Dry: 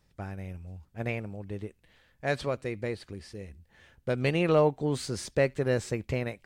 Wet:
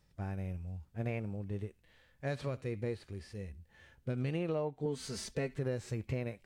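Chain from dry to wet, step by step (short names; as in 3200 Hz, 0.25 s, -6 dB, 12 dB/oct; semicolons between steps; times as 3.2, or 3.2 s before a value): harmonic-percussive split percussive -12 dB; 4.85–5.59 comb 4.5 ms, depth 76%; compressor 10:1, threshold -32 dBFS, peak gain reduction 14 dB; gain +1 dB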